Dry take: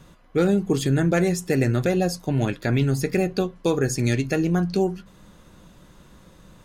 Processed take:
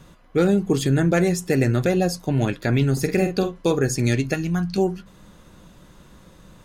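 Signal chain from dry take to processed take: 2.92–3.72 s: doubling 47 ms -8 dB; 4.34–4.78 s: peaking EQ 450 Hz -14.5 dB 1.1 oct; trim +1.5 dB

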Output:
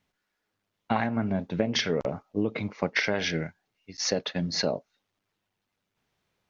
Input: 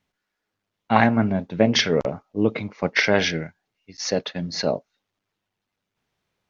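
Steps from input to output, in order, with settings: compression 12:1, threshold -22 dBFS, peak gain reduction 12 dB

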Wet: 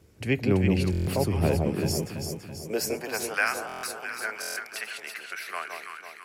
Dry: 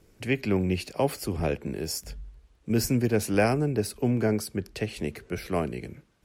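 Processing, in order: high-pass sweep 71 Hz -> 1.4 kHz, 1.24–3.44 s; echo whose repeats swap between lows and highs 166 ms, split 1 kHz, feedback 72%, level -2.5 dB; buffer glitch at 0.91/3.67/4.40 s, samples 1024, times 6

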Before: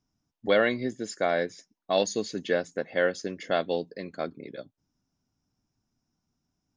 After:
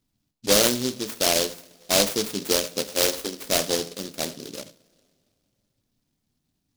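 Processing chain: 2.90–3.46 s: high-pass 240 Hz 24 dB/octave; two-slope reverb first 0.45 s, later 2.5 s, from -22 dB, DRR 7.5 dB; delay time shaken by noise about 4.5 kHz, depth 0.25 ms; trim +3 dB

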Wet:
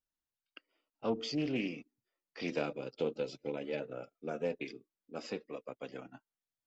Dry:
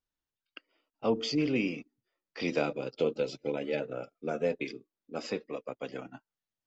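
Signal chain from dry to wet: loudspeaker Doppler distortion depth 0.15 ms; trim -5.5 dB

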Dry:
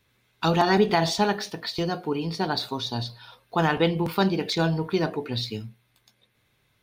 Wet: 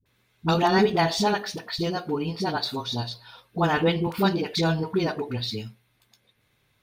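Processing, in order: phase dispersion highs, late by 59 ms, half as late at 490 Hz

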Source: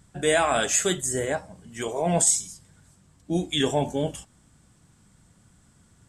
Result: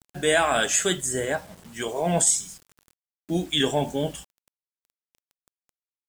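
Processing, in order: graphic EQ with 31 bands 100 Hz -8 dB, 1.6 kHz +4 dB, 3.15 kHz +4 dB; bit crusher 8-bit

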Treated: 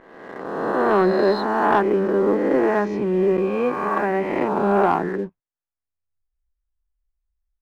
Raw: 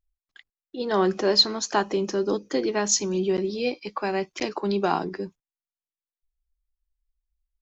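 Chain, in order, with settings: reverse spectral sustain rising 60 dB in 1.66 s; low-pass 1.9 kHz 24 dB/octave; waveshaping leveller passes 1

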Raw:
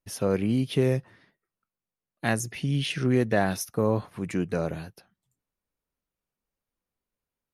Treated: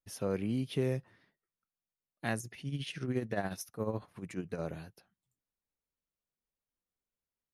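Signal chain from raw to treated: 2.39–4.60 s: tremolo 14 Hz, depth 63%; trim -8.5 dB

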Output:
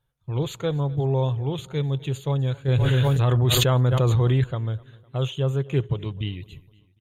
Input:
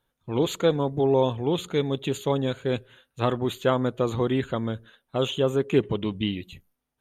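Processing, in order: resonant low shelf 170 Hz +7 dB, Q 3; wow and flutter 18 cents; on a send: feedback delay 253 ms, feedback 50%, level -22.5 dB; 2.68–4.44 s: on the sum: level flattener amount 100%; trim -4.5 dB

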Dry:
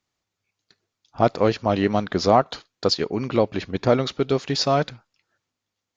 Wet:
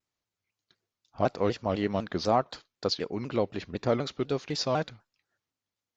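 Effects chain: vibrato with a chosen wave saw down 4 Hz, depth 160 cents; trim -8 dB

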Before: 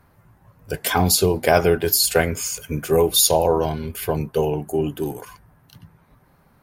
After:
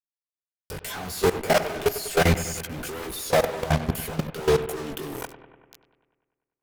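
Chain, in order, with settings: fuzz box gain 40 dB, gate -33 dBFS; chorus voices 2, 0.66 Hz, delay 20 ms, depth 4.9 ms; level held to a coarse grid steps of 17 dB; bucket-brigade echo 98 ms, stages 2048, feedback 66%, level -13 dB

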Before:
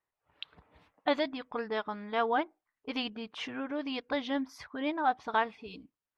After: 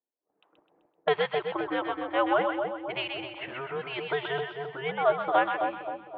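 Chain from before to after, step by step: level-controlled noise filter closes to 420 Hz, open at -29.5 dBFS; two-band feedback delay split 1 kHz, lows 263 ms, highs 128 ms, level -4.5 dB; mistuned SSB -130 Hz 440–3400 Hz; trim +4.5 dB

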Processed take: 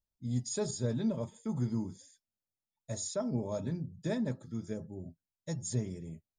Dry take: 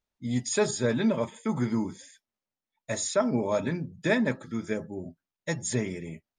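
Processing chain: FFT filter 110 Hz 0 dB, 290 Hz -9 dB, 660 Hz -10 dB, 2.3 kHz -21 dB, 4.6 kHz -7 dB

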